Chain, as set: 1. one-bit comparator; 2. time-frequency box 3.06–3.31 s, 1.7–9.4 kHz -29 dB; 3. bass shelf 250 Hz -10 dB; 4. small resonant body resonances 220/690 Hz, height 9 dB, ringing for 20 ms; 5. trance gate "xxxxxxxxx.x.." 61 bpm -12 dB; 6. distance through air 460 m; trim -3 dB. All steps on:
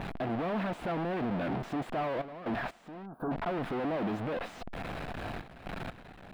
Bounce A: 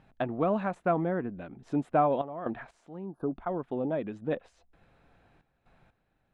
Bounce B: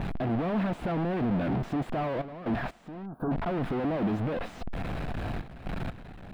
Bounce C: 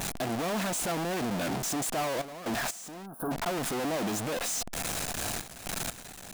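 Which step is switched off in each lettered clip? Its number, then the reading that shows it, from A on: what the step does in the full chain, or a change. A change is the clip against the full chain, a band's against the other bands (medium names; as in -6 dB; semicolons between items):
1, crest factor change +8.5 dB; 3, 125 Hz band +6.5 dB; 6, 4 kHz band +10.5 dB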